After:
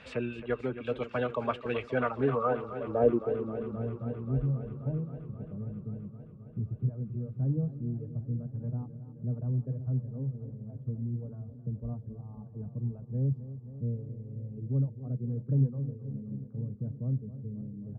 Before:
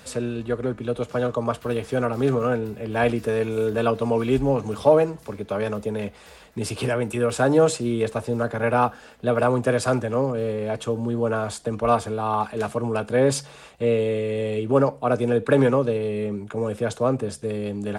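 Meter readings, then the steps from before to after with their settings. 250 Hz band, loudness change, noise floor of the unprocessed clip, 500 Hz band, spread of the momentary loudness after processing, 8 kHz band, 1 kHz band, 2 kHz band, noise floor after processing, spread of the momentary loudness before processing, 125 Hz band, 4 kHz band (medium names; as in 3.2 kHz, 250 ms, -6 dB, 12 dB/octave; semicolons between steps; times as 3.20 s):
-10.5 dB, -10.5 dB, -47 dBFS, -14.0 dB, 12 LU, under -35 dB, -14.5 dB, under -10 dB, -49 dBFS, 9 LU, -2.5 dB, under -15 dB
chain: reverb removal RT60 1.7 s; low-pass sweep 2.6 kHz -> 150 Hz, 1.84–3.84 s; modulated delay 265 ms, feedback 78%, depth 54 cents, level -13.5 dB; trim -6 dB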